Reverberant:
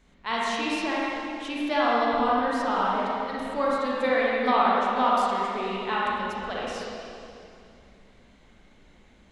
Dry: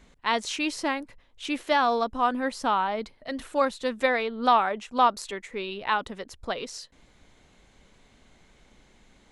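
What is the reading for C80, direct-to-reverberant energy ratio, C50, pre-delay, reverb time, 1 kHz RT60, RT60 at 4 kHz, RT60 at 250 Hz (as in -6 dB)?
-2.5 dB, -6.5 dB, -4.5 dB, 30 ms, 2.6 s, 2.4 s, 2.4 s, 3.2 s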